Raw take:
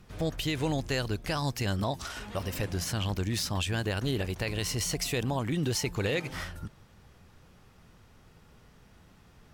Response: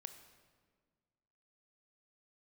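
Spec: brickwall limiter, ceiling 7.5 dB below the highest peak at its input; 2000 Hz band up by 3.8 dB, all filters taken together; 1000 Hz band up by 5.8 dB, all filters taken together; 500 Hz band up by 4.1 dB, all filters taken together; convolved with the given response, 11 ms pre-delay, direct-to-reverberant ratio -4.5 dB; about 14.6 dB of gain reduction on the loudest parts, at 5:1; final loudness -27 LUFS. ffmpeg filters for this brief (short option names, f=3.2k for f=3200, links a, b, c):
-filter_complex "[0:a]equalizer=f=500:t=o:g=3.5,equalizer=f=1k:t=o:g=5.5,equalizer=f=2k:t=o:g=3,acompressor=threshold=-40dB:ratio=5,alimiter=level_in=9.5dB:limit=-24dB:level=0:latency=1,volume=-9.5dB,asplit=2[a][b];[1:a]atrim=start_sample=2205,adelay=11[c];[b][c]afir=irnorm=-1:irlink=0,volume=10dB[d];[a][d]amix=inputs=2:normalize=0,volume=10.5dB"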